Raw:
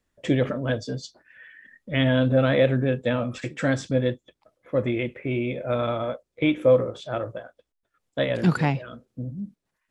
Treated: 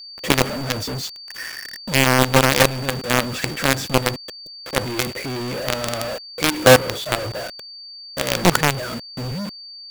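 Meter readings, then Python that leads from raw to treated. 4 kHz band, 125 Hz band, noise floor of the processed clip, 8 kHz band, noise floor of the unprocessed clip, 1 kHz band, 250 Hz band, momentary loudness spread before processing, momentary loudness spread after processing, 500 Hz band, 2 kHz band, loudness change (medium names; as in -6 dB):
+14.0 dB, +1.5 dB, -39 dBFS, no reading, -81 dBFS, +11.5 dB, +1.0 dB, 15 LU, 17 LU, +2.5 dB, +10.0 dB, +4.5 dB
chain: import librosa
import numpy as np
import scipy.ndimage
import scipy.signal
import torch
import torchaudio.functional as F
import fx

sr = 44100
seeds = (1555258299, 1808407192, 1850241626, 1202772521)

p1 = fx.rattle_buzz(x, sr, strikes_db=-20.0, level_db=-23.0)
p2 = fx.over_compress(p1, sr, threshold_db=-28.0, ratio=-0.5)
p3 = p1 + (p2 * 10.0 ** (-3.0 / 20.0))
p4 = fx.quant_companded(p3, sr, bits=2)
p5 = p4 + 10.0 ** (-34.0 / 20.0) * np.sin(2.0 * np.pi * 4600.0 * np.arange(len(p4)) / sr)
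p6 = fx.spec_erase(p5, sr, start_s=4.33, length_s=0.3, low_hz=630.0, high_hz=3500.0)
y = p6 * 10.0 ** (-1.5 / 20.0)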